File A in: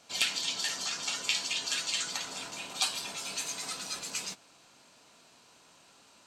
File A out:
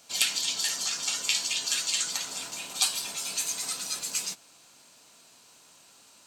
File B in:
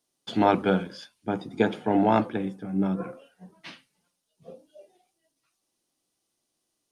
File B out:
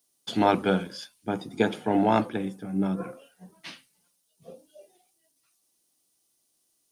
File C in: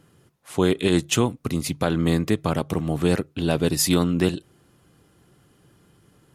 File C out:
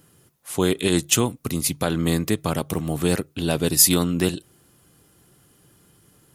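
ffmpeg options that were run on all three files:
-af "aemphasis=mode=production:type=50kf,volume=-1dB"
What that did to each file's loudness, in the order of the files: +4.5, −1.0, +1.5 LU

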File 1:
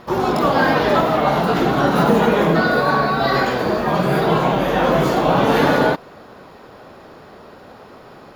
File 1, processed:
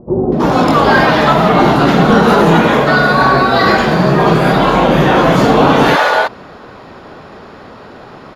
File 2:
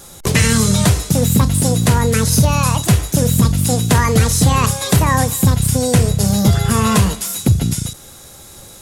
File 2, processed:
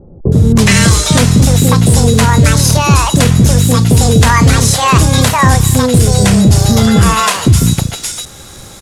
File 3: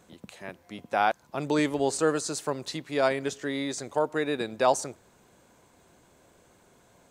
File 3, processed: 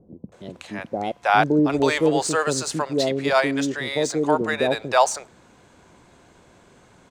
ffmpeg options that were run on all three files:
-filter_complex "[0:a]acrossover=split=550[link_01][link_02];[link_02]adelay=320[link_03];[link_01][link_03]amix=inputs=2:normalize=0,apsyclip=10dB,adynamicsmooth=sensitivity=3:basefreq=7400,volume=-1.5dB"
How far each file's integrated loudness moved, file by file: +7.0, +5.5, +6.5 LU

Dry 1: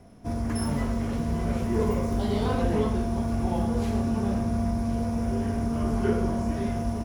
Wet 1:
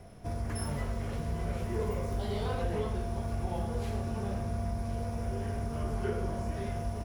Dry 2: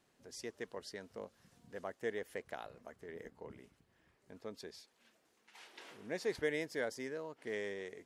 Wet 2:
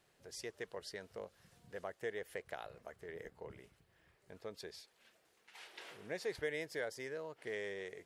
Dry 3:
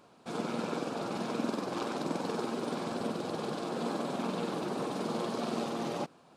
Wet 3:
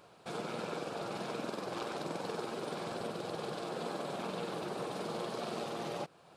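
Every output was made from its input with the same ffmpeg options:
-af "equalizer=frequency=250:width_type=o:width=0.67:gain=-11,equalizer=frequency=1000:width_type=o:width=0.67:gain=-3,equalizer=frequency=6300:width_type=o:width=0.67:gain=-3,acompressor=threshold=-46dB:ratio=1.5,volume=3dB"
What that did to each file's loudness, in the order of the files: −7.5, −2.0, −4.5 LU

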